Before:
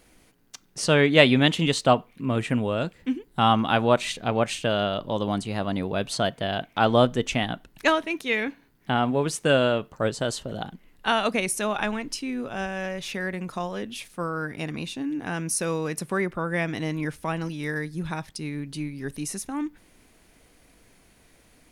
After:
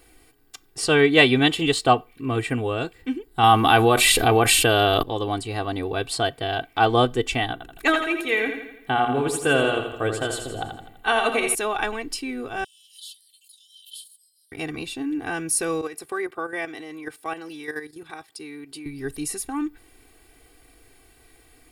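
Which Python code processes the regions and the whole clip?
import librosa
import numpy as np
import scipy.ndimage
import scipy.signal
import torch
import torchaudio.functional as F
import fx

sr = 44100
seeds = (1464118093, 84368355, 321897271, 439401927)

y = fx.chain(x, sr, fx.peak_eq(hz=12000.0, db=14.0, octaves=0.56),
    fx.env_flatten(amount_pct=70), at=(3.43, 5.03))
y = fx.chain(y, sr, fx.peak_eq(hz=4900.0, db=-7.5, octaves=0.45),
    fx.hum_notches(base_hz=60, count=8),
    fx.echo_feedback(ms=83, feedback_pct=51, wet_db=-7.0), at=(7.52, 11.55))
y = fx.chain(y, sr, fx.cheby_ripple_highpass(hz=3000.0, ripple_db=9),
    fx.pre_swell(db_per_s=120.0), at=(12.64, 14.52))
y = fx.chain(y, sr, fx.highpass(hz=300.0, slope=12),
    fx.level_steps(step_db=10), at=(15.81, 18.86))
y = fx.high_shelf(y, sr, hz=11000.0, db=6.0)
y = fx.notch(y, sr, hz=6100.0, q=5.7)
y = y + 0.8 * np.pad(y, (int(2.6 * sr / 1000.0), 0))[:len(y)]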